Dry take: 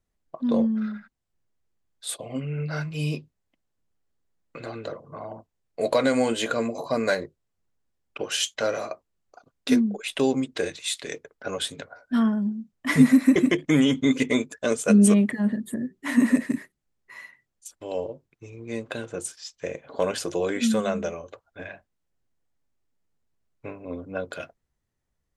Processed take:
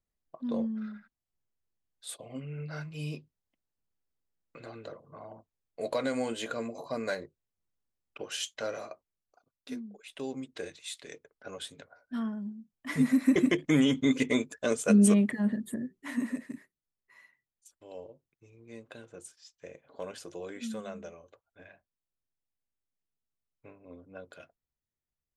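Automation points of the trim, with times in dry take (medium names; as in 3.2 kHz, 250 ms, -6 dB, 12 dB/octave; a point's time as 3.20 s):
8.81 s -9.5 dB
9.82 s -20 dB
10.52 s -12 dB
12.89 s -12 dB
13.39 s -4.5 dB
15.71 s -4.5 dB
16.36 s -15 dB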